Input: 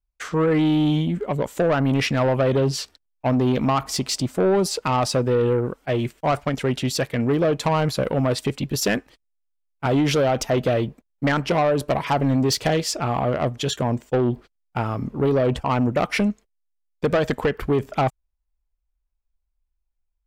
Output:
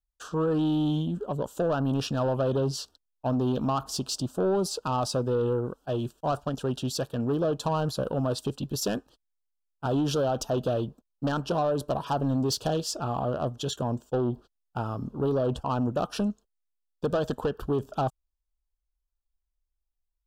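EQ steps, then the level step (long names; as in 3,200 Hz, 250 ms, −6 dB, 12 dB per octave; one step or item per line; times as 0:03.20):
Butterworth band-reject 2,100 Hz, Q 1.5
−6.5 dB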